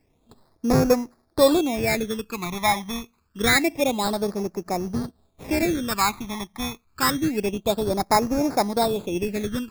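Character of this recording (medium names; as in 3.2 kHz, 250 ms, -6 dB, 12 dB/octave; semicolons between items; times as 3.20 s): aliases and images of a low sample rate 3 kHz, jitter 0%; phasing stages 12, 0.27 Hz, lowest notch 470–3200 Hz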